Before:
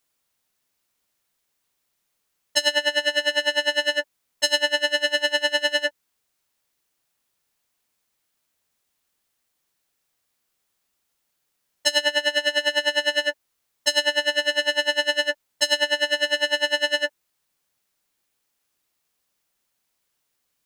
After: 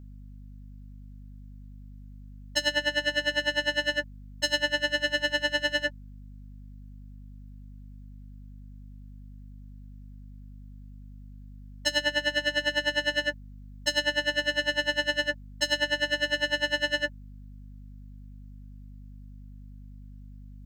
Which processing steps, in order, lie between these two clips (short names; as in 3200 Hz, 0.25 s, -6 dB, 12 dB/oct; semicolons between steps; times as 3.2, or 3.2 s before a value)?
thirty-one-band EQ 315 Hz +11 dB, 1600 Hz +5 dB, 10000 Hz -9 dB; hum 50 Hz, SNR 13 dB; gain -6.5 dB